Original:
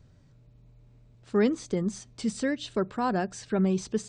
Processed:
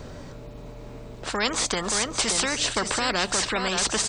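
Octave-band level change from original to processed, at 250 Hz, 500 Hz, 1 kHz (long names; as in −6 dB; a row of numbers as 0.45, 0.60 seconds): −5.5, −1.0, +6.0 decibels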